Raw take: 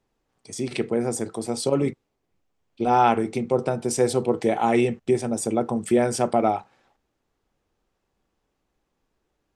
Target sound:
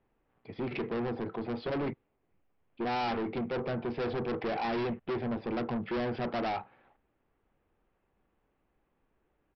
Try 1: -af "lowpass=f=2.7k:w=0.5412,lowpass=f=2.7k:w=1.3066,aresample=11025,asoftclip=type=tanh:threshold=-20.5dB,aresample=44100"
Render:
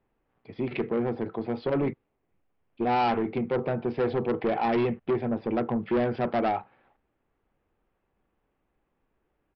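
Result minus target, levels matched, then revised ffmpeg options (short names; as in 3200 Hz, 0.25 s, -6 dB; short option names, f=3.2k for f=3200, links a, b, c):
soft clip: distortion -6 dB
-af "lowpass=f=2.7k:w=0.5412,lowpass=f=2.7k:w=1.3066,aresample=11025,asoftclip=type=tanh:threshold=-30dB,aresample=44100"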